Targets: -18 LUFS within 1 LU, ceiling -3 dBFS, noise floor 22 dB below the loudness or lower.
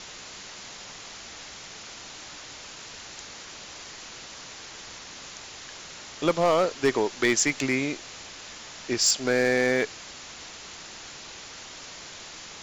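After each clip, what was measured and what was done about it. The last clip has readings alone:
clipped samples 0.3%; clipping level -14.5 dBFS; noise floor -43 dBFS; noise floor target -47 dBFS; loudness -24.5 LUFS; peak level -14.5 dBFS; loudness target -18.0 LUFS
-> clip repair -14.5 dBFS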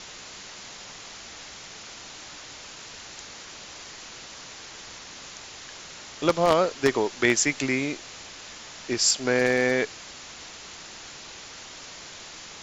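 clipped samples 0.0%; noise floor -43 dBFS; noise floor target -46 dBFS
-> noise print and reduce 6 dB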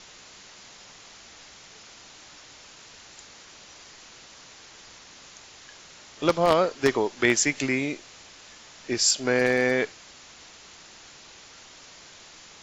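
noise floor -49 dBFS; loudness -23.5 LUFS; peak level -5.5 dBFS; loudness target -18.0 LUFS
-> trim +5.5 dB; peak limiter -3 dBFS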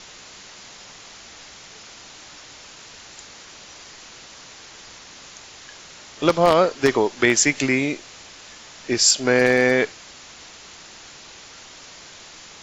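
loudness -18.5 LUFS; peak level -3.0 dBFS; noise floor -44 dBFS

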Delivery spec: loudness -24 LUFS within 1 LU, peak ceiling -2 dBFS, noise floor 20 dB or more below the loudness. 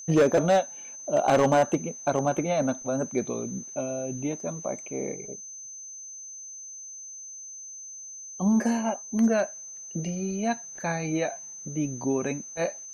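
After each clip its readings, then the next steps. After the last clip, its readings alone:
clipped samples 0.6%; clipping level -15.0 dBFS; steady tone 6.2 kHz; tone level -39 dBFS; loudness -27.5 LUFS; peak level -15.0 dBFS; loudness target -24.0 LUFS
-> clip repair -15 dBFS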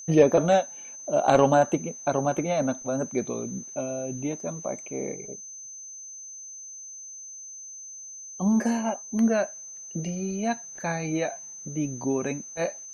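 clipped samples 0.0%; steady tone 6.2 kHz; tone level -39 dBFS
-> band-stop 6.2 kHz, Q 30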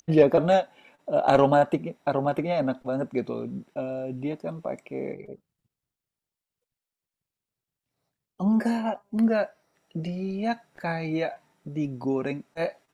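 steady tone not found; loudness -26.5 LUFS; peak level -6.0 dBFS; loudness target -24.0 LUFS
-> trim +2.5 dB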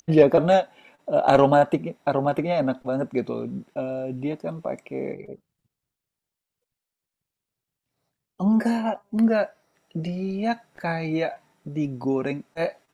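loudness -24.0 LUFS; peak level -3.5 dBFS; noise floor -87 dBFS

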